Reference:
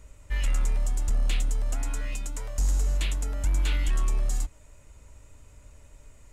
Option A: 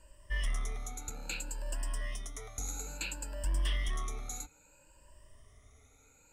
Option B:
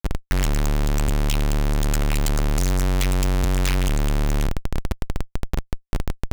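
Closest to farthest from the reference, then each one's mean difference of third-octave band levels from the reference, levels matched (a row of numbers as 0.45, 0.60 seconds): A, B; 4.5, 7.5 decibels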